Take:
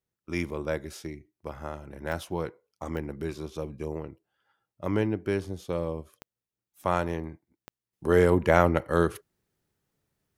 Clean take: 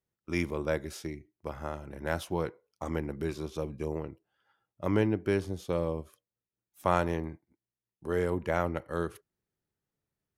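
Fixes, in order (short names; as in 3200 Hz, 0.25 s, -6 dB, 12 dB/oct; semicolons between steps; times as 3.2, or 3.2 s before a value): de-click; gain 0 dB, from 7.93 s -9 dB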